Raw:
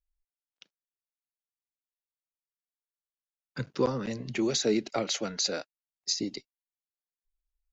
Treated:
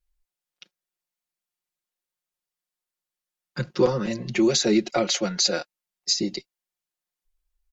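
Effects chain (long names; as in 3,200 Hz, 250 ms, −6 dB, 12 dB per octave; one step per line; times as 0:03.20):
tape wow and flutter 19 cents
comb filter 5.6 ms, depth 80%
level +4.5 dB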